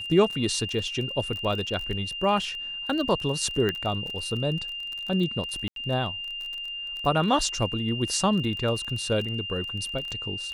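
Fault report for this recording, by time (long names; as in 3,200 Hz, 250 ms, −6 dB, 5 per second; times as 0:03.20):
surface crackle 23 per second −31 dBFS
whistle 2,800 Hz −32 dBFS
0:01.67: drop-out 3 ms
0:03.69: click −14 dBFS
0:05.68–0:05.76: drop-out 82 ms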